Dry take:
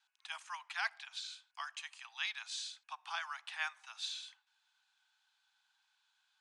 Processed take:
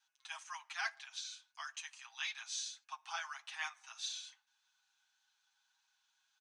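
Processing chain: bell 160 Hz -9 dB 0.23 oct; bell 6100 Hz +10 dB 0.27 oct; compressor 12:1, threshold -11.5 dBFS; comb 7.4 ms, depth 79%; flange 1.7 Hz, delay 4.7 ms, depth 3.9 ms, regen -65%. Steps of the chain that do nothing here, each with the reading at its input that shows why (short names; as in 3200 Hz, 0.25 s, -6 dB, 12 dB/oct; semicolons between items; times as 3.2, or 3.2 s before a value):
bell 160 Hz: input band starts at 600 Hz; compressor, threshold -11.5 dBFS: input peak -23.0 dBFS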